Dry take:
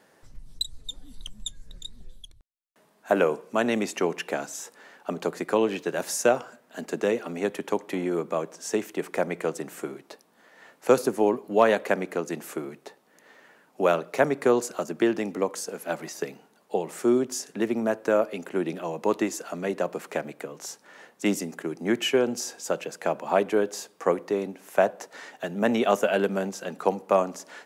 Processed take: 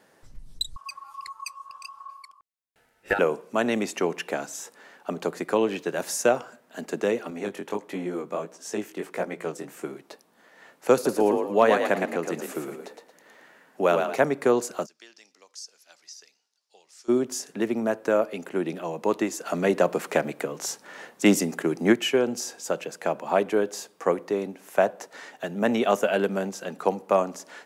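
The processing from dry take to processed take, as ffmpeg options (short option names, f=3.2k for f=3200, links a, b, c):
-filter_complex "[0:a]asettb=1/sr,asplit=3[a][b][c];[a]atrim=end=0.764[d];[b]atrim=start=0.76:end=3.19,asetpts=PTS-STARTPTS,afade=t=in:d=0.004:c=qsin,afade=t=out:st=2.426:d=0.004:c=qsin,aeval=exprs='val(0)*sin(2*PI*1100*n/s)':c=same[e];[c]atrim=start=3.186[f];[d][e]acrossfade=d=0.004:c1=hsin:c2=qsin[g];[g][f]acrossfade=d=0.004:c1=qsin:c2=hsin,asettb=1/sr,asplit=3[h][i][j];[h]atrim=end=7.304[k];[i]atrim=start=7.3:end=9.84,asetpts=PTS-STARTPTS,afade=t=in:d=0.004:c=qsin,afade=t=out:st=2.536:d=0.004:c=qsin,flanger=delay=15:depth=7.2:speed=1.5[l];[j]atrim=start=9.836[m];[k][l]acrossfade=d=0.004:c1=hsin:c2=qsin[n];[n][m]acrossfade=d=0.004:c1=qsin:c2=hsin,asettb=1/sr,asplit=3[o][p][q];[o]atrim=end=10.944[r];[p]atrim=start=10.94:end=14.16,asetpts=PTS-STARTPTS,afade=t=in:d=0.004:c=qsin,afade=t=out:st=3.216:d=0.004:c=qsin,asplit=5[s][t][u][v][w];[t]adelay=113,afreqshift=41,volume=-5dB[x];[u]adelay=226,afreqshift=82,volume=-14.4dB[y];[v]adelay=339,afreqshift=123,volume=-23.7dB[z];[w]adelay=452,afreqshift=164,volume=-33.1dB[aa];[s][x][y][z][aa]amix=inputs=5:normalize=0,atrim=end_sample=142002[ab];[q]atrim=start=14.156[ac];[r][ab]acrossfade=d=0.004:c1=hsin:c2=qsin[ad];[ad][ac]acrossfade=d=0.004:c1=qsin:c2=hsin,asplit=3[ae][af][ag];[ae]afade=t=out:st=14.85:d=0.02[ah];[af]bandpass=f=5.2k:t=q:w=3.5,afade=t=in:st=14.85:d=0.02,afade=t=out:st=17.08:d=0.02[ai];[ag]afade=t=in:st=17.08:d=0.02[aj];[ah][ai][aj]amix=inputs=3:normalize=0,asplit=3[ak][al][am];[ak]afade=t=out:st=19.45:d=0.02[an];[al]acontrast=64,afade=t=in:st=19.45:d=0.02,afade=t=out:st=21.92:d=0.02[ao];[am]afade=t=in:st=21.92:d=0.02[ap];[an][ao][ap]amix=inputs=3:normalize=0"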